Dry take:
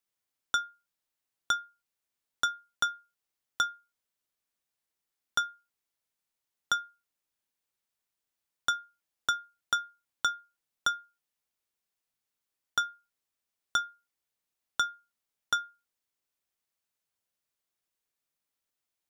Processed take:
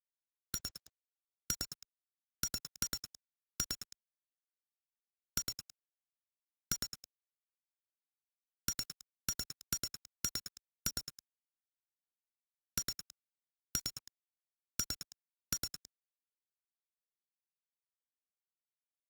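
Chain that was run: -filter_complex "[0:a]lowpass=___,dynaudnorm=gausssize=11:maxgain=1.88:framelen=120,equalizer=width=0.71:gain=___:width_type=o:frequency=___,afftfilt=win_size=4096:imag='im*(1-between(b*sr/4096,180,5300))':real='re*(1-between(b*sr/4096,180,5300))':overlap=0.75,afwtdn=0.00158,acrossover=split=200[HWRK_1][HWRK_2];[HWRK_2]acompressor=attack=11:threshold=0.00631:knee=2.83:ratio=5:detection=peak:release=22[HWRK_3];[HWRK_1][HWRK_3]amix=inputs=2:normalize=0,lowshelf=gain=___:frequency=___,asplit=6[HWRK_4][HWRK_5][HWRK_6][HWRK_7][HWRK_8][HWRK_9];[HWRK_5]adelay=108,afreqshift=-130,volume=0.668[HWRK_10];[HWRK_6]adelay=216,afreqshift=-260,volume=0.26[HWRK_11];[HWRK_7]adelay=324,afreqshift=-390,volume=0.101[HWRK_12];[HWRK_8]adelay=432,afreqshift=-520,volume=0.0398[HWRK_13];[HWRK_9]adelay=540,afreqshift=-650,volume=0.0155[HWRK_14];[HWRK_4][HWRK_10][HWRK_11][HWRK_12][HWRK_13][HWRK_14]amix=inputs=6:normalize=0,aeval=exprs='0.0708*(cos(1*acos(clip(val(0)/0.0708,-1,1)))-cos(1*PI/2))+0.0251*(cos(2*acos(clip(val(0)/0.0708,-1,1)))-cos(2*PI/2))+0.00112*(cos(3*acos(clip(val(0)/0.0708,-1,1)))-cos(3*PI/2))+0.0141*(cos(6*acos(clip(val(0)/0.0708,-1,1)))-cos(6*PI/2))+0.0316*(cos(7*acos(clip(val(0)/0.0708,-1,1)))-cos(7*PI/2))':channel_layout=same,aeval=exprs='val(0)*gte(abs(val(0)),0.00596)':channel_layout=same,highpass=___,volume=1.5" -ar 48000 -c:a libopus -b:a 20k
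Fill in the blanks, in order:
7100, 7.5, 120, -11, 350, 44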